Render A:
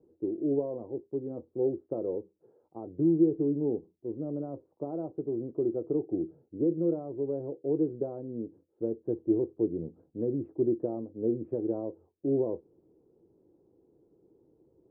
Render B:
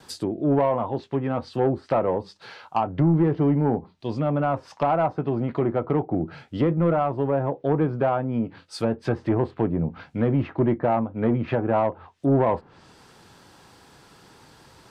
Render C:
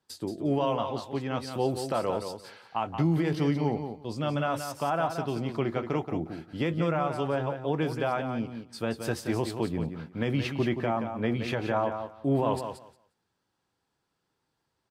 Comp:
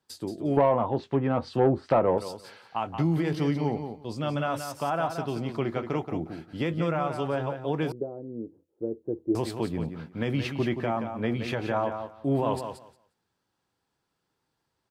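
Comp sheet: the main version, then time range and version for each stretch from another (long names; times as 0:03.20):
C
0:00.57–0:02.18: punch in from B
0:07.92–0:09.35: punch in from A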